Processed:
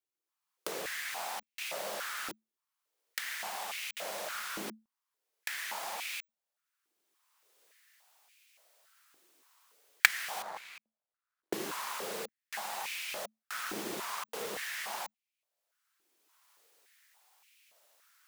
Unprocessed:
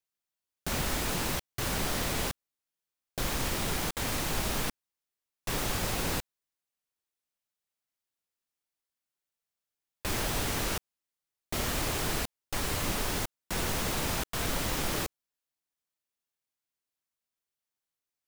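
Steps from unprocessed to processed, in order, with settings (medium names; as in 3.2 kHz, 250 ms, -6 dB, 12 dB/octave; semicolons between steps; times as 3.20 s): 10.42–11.53 s: median filter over 15 samples; recorder AGC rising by 21 dB/s; frequency shift -220 Hz; step-sequenced high-pass 3.5 Hz 340–2400 Hz; trim -8 dB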